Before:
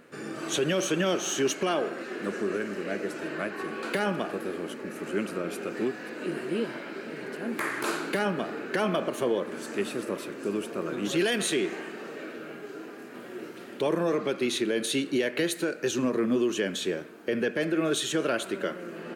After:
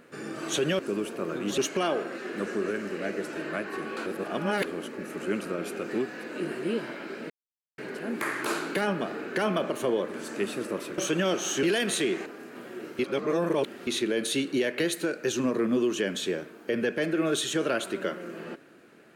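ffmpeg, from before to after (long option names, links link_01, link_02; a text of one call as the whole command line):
ffmpeg -i in.wav -filter_complex "[0:a]asplit=11[link_01][link_02][link_03][link_04][link_05][link_06][link_07][link_08][link_09][link_10][link_11];[link_01]atrim=end=0.792[link_12];[link_02]atrim=start=10.358:end=11.152[link_13];[link_03]atrim=start=1.438:end=3.922[link_14];[link_04]atrim=start=3.918:end=4.512,asetpts=PTS-STARTPTS,areverse[link_15];[link_05]atrim=start=4.508:end=7.16,asetpts=PTS-STARTPTS,afade=type=out:start_time=2.648:duration=0.004:curve=hsin,apad=pad_dur=0.48[link_16];[link_06]atrim=start=7.16:end=10.362,asetpts=PTS-STARTPTS,afade=type=in:duration=0.004:curve=hsin[link_17];[link_07]atrim=start=0.788:end=1.442[link_18];[link_08]atrim=start=11.148:end=11.782[link_19];[link_09]atrim=start=12.848:end=13.582[link_20];[link_10]atrim=start=13.578:end=14.462,asetpts=PTS-STARTPTS,areverse[link_21];[link_11]atrim=start=14.458[link_22];[link_12][link_13]acrossfade=duration=0.004:curve1=hsin:curve2=hsin[link_23];[link_23][link_14]acrossfade=duration=0.004:curve1=hsin:curve2=hsin[link_24];[link_24][link_15]acrossfade=duration=0.004:curve1=hsin:curve2=hsin[link_25];[link_16][link_17]concat=n=2:v=0:a=1[link_26];[link_25][link_26]acrossfade=duration=0.004:curve1=hsin:curve2=hsin[link_27];[link_27][link_18]acrossfade=duration=0.004:curve1=hsin:curve2=hsin[link_28];[link_28][link_19]acrossfade=duration=0.004:curve1=hsin:curve2=hsin[link_29];[link_29][link_20]acrossfade=duration=0.004:curve1=hsin:curve2=hsin[link_30];[link_30][link_21]acrossfade=duration=0.004:curve1=hsin:curve2=hsin[link_31];[link_31][link_22]acrossfade=duration=0.004:curve1=hsin:curve2=hsin" out.wav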